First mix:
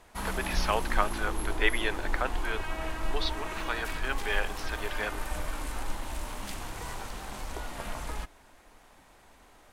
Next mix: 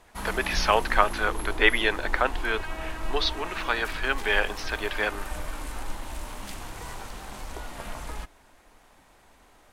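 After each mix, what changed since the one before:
speech +7.0 dB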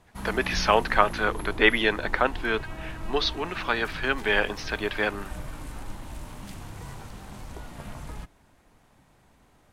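background −6.0 dB
master: add parametric band 130 Hz +13.5 dB 1.9 octaves

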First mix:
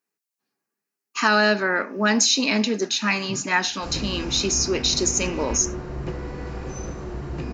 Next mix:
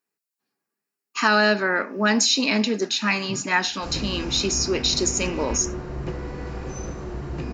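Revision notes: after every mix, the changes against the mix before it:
speech: add notch filter 6,200 Hz, Q 13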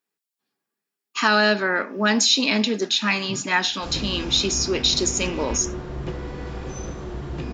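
master: add parametric band 3,400 Hz +9 dB 0.27 octaves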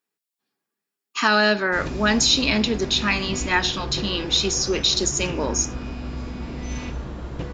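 background: entry −2.10 s

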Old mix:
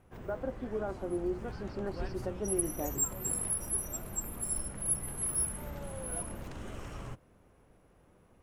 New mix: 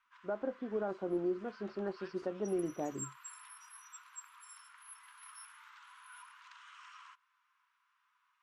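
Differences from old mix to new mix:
background: add Chebyshev high-pass with heavy ripple 970 Hz, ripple 3 dB
master: add high-frequency loss of the air 110 metres

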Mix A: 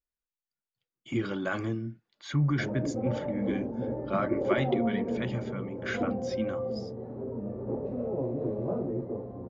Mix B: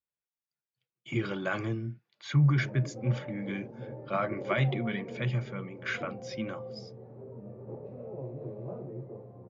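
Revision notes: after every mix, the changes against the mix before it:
background −8.5 dB
master: add loudspeaker in its box 110–7,300 Hz, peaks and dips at 130 Hz +9 dB, 260 Hz −9 dB, 2,400 Hz +5 dB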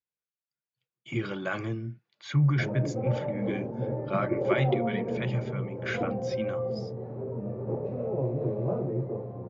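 background +10.5 dB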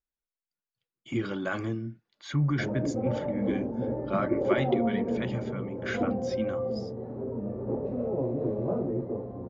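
master: remove loudspeaker in its box 110–7,300 Hz, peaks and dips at 130 Hz +9 dB, 260 Hz −9 dB, 2,400 Hz +5 dB

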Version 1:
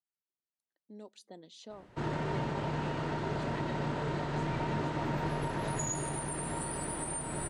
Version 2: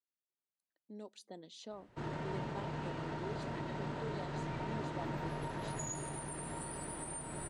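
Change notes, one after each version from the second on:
background −6.5 dB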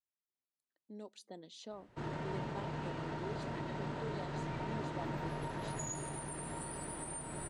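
nothing changed

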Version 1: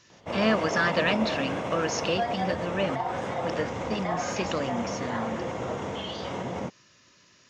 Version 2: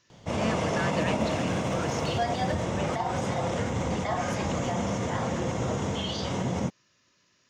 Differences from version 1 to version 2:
speech −8.5 dB
background: add bass and treble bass +9 dB, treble +11 dB

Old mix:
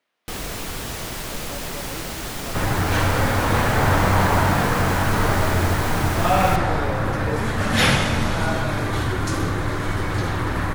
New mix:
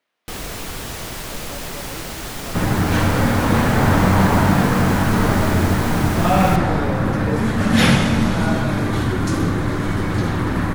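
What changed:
first sound: send on
second sound: add parametric band 210 Hz +9.5 dB 1.3 octaves

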